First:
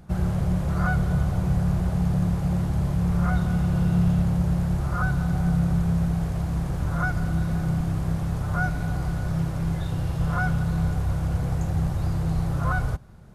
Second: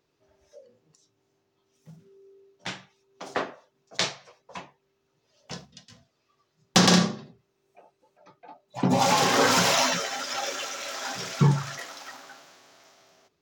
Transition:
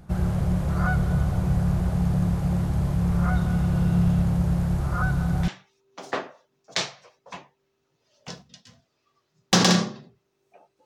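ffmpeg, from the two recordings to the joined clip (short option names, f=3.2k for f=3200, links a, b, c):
-filter_complex "[1:a]asplit=2[a][b];[0:a]apad=whole_dur=10.85,atrim=end=10.85,atrim=end=5.482[c];[b]atrim=start=2.708:end=8.08[d];[a]atrim=start=1.88:end=2.71,asetpts=PTS-STARTPTS,volume=-6.5dB,afade=t=in:d=0.004:c=hsin,afade=t=out:st=0.826:d=0.004:c=hsin,adelay=205065S[e];[c][d]acrossfade=d=0.004:c1=hsin:c2=hsin[f];[f][e]amix=inputs=2:normalize=0"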